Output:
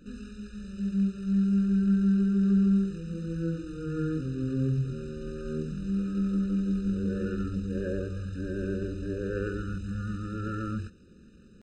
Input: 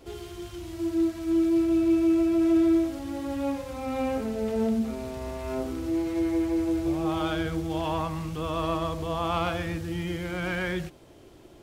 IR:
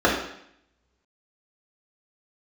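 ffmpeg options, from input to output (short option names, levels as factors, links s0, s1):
-af "asetrate=26222,aresample=44100,atempo=1.68179,afftfilt=real='re*eq(mod(floor(b*sr/1024/600),2),0)':imag='im*eq(mod(floor(b*sr/1024/600),2),0)':win_size=1024:overlap=0.75,volume=0.841"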